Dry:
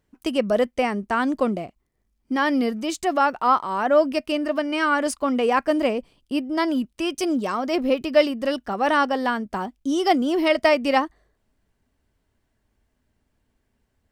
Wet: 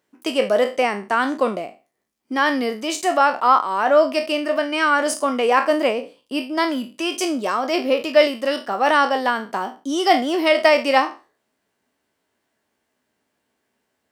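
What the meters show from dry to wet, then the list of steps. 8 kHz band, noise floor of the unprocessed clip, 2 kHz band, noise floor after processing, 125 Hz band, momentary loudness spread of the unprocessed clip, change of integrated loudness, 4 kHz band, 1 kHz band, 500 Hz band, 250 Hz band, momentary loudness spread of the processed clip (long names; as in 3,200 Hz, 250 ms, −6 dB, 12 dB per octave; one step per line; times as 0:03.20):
+6.0 dB, −73 dBFS, +4.5 dB, −74 dBFS, can't be measured, 7 LU, +3.0 dB, +5.5 dB, +4.0 dB, +3.0 dB, −1.5 dB, 9 LU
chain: peak hold with a decay on every bin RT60 0.31 s
Bessel high-pass filter 370 Hz, order 2
level +3.5 dB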